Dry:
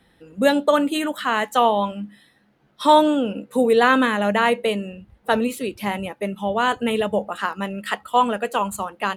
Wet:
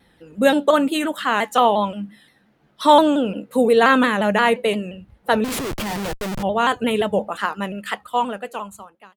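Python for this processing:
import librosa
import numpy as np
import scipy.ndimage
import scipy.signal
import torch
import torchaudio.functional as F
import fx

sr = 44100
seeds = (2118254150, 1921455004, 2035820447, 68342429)

y = fx.fade_out_tail(x, sr, length_s=1.67)
y = fx.schmitt(y, sr, flips_db=-37.0, at=(5.44, 6.43))
y = fx.vibrato_shape(y, sr, shape='saw_down', rate_hz=5.7, depth_cents=100.0)
y = y * librosa.db_to_amplitude(1.5)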